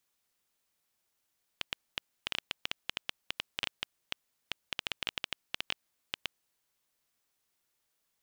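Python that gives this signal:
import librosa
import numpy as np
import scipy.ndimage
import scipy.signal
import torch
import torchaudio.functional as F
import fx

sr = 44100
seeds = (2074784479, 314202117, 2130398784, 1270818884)

y = fx.geiger_clicks(sr, seeds[0], length_s=4.83, per_s=7.8, level_db=-13.5)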